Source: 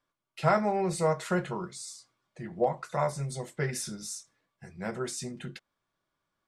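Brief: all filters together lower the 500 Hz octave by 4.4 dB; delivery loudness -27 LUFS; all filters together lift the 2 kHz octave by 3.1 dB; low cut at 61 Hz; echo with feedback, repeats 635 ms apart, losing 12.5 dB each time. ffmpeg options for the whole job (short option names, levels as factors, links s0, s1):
-af "highpass=61,equalizer=f=500:t=o:g=-6,equalizer=f=2000:t=o:g=4.5,aecho=1:1:635|1270|1905:0.237|0.0569|0.0137,volume=2"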